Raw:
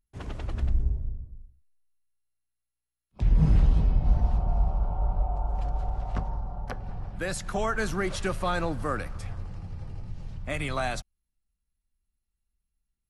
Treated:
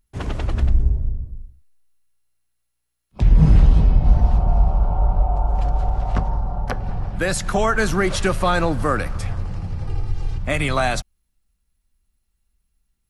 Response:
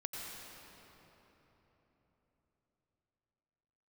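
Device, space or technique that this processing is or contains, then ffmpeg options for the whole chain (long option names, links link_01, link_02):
parallel compression: -filter_complex "[0:a]asettb=1/sr,asplit=3[link_01][link_02][link_03];[link_01]atrim=end=9.874[link_04];[link_02]atrim=start=9.87:end=10.38,asetpts=PTS-STARTPTS,afade=type=in:duration=0.004:curve=qsin,afade=type=out:start_time=0.506:duration=0.004:curve=qsin,aecho=1:1:2.5:0.93,atrim=end_sample=22491[link_05];[link_03]atrim=start=10.376[link_06];[link_04][link_05]acrossfade=duration=0.004:curve1=hsin:curve2=qsin[link_07];[link_07][link_06]acrossfade=duration=0.004:curve1=qsin:curve2=hsin,asplit=2[link_08][link_09];[link_09]acompressor=threshold=-30dB:ratio=6,volume=-4.5dB[link_10];[link_08][link_10]amix=inputs=2:normalize=0,volume=7dB"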